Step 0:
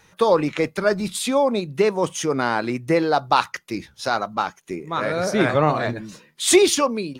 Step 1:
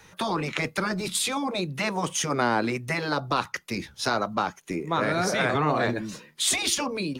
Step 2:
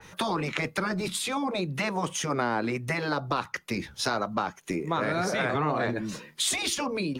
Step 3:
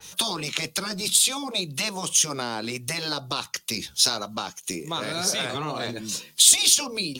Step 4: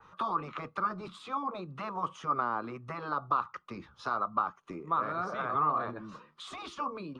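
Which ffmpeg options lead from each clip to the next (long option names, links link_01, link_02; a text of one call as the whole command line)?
ffmpeg -i in.wav -filter_complex "[0:a]acrossover=split=200|580[link_01][link_02][link_03];[link_01]acompressor=threshold=-37dB:ratio=4[link_04];[link_02]acompressor=threshold=-24dB:ratio=4[link_05];[link_03]acompressor=threshold=-25dB:ratio=4[link_06];[link_04][link_05][link_06]amix=inputs=3:normalize=0,afftfilt=real='re*lt(hypot(re,im),0.398)':imag='im*lt(hypot(re,im),0.398)':win_size=1024:overlap=0.75,volume=2.5dB" out.wav
ffmpeg -i in.wav -af "acompressor=threshold=-32dB:ratio=2,adynamicequalizer=threshold=0.00447:dfrequency=3100:dqfactor=0.7:tfrequency=3100:tqfactor=0.7:attack=5:release=100:ratio=0.375:range=2.5:mode=cutabove:tftype=highshelf,volume=3.5dB" out.wav
ffmpeg -i in.wav -af "aexciter=amount=4.4:drive=7.9:freq=2800,volume=-3.5dB" out.wav
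ffmpeg -i in.wav -af "lowpass=frequency=1200:width_type=q:width=8.4,volume=-8.5dB" out.wav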